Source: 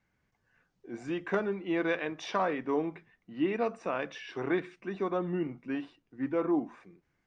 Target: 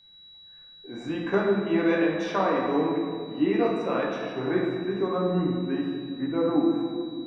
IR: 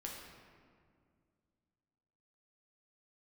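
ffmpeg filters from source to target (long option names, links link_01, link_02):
-filter_complex "[0:a]asetnsamples=nb_out_samples=441:pad=0,asendcmd='4.16 equalizer g -12',equalizer=frequency=3800:width_type=o:width=1.6:gain=-5,aeval=exprs='val(0)+0.00141*sin(2*PI*3900*n/s)':channel_layout=same[link_01];[1:a]atrim=start_sample=2205[link_02];[link_01][link_02]afir=irnorm=-1:irlink=0,volume=8dB"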